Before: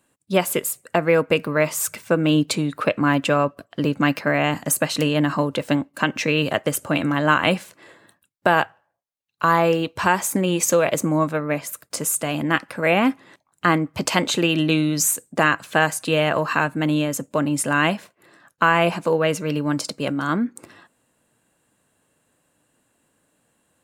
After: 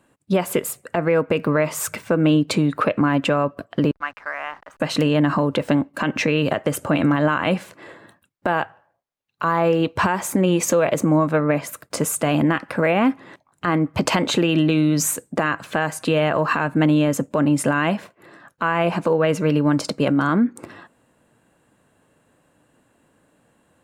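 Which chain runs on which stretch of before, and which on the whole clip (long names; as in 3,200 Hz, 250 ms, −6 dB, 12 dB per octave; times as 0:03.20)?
0:03.91–0:04.80: four-pole ladder band-pass 1,500 Hz, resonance 30% + slack as between gear wheels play −47.5 dBFS
whole clip: high-shelf EQ 3,200 Hz −11.5 dB; downward compressor, threshold −21 dBFS; boost into a limiter +15.5 dB; level −7.5 dB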